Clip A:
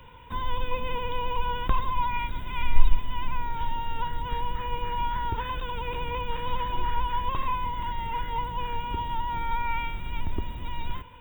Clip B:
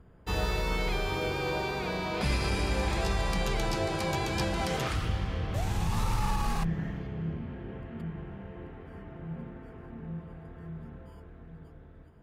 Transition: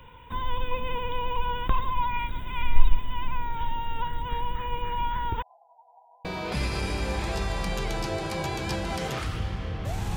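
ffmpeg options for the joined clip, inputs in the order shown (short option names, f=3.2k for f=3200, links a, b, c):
-filter_complex "[0:a]asettb=1/sr,asplit=3[a][b][c];[a]atrim=end=5.424[d];[b]atrim=start=5.42:end=6.25,asetpts=PTS-STARTPTS,afade=t=in:d=0.004:c=qsin,afade=t=out:st=0.826:d=0.004:c=qsin,asuperpass=centerf=740:order=8:qfactor=3.7[e];[c]atrim=start=6.246[f];[d][e]acrossfade=d=0.004:c1=hsin:c2=qsin[g];[g][f]acrossfade=d=0.004:c1=qsin:c2=hsin,apad=whole_dur=10.16,atrim=end=10.16,atrim=end=6.252[h];[1:a]atrim=start=1.938:end=5.85[i];[h][i]acrossfade=d=0.004:c1=hsin:c2=hsin"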